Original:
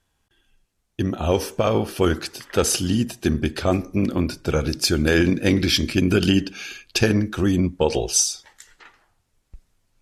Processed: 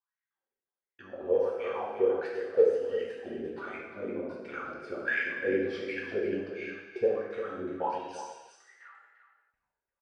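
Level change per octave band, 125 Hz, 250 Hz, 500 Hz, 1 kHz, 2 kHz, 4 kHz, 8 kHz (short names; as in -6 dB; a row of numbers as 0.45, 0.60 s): -28.5 dB, -18.0 dB, -5.0 dB, -7.5 dB, -6.5 dB, -26.0 dB, under -30 dB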